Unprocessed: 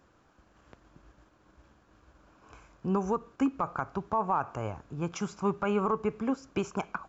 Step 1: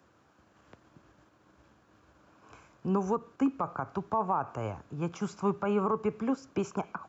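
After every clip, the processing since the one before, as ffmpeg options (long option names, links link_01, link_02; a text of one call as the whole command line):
ffmpeg -i in.wav -filter_complex "[0:a]highpass=frequency=77:width=0.5412,highpass=frequency=77:width=1.3066,acrossover=split=310|780|1200[link_01][link_02][link_03][link_04];[link_04]alimiter=level_in=14dB:limit=-24dB:level=0:latency=1:release=80,volume=-14dB[link_05];[link_01][link_02][link_03][link_05]amix=inputs=4:normalize=0" out.wav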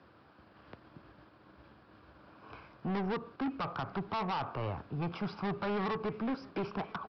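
ffmpeg -i in.wav -af "aresample=11025,asoftclip=type=tanh:threshold=-35dB,aresample=44100,aecho=1:1:985:0.0708,volume=4dB" out.wav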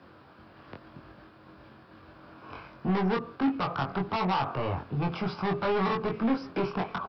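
ffmpeg -i in.wav -filter_complex "[0:a]asplit=2[link_01][link_02];[link_02]adelay=22,volume=-3dB[link_03];[link_01][link_03]amix=inputs=2:normalize=0,volume=5dB" out.wav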